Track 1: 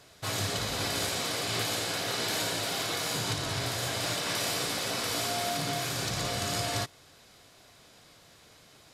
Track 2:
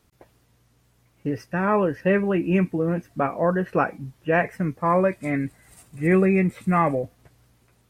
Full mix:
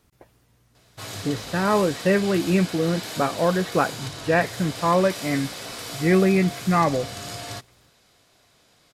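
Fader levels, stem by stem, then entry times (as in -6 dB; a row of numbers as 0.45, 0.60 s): -3.5, +0.5 dB; 0.75, 0.00 s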